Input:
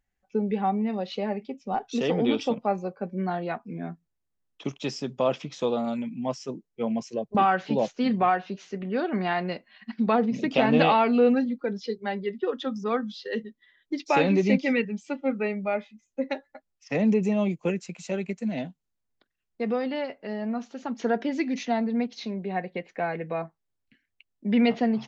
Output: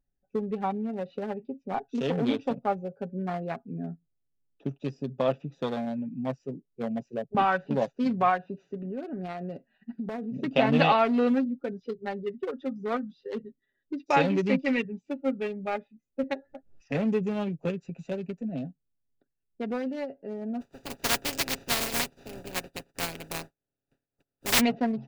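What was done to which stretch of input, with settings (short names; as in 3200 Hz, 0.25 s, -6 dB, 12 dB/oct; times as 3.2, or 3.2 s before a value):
8.81–10.37 compressor 4:1, threshold -28 dBFS
16.23–18.59 upward compressor, threshold -28 dBFS
20.6–24.59 spectral contrast lowered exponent 0.15
whole clip: Wiener smoothing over 41 samples; comb 7.3 ms, depth 41%; dynamic EQ 340 Hz, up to -5 dB, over -36 dBFS, Q 1.6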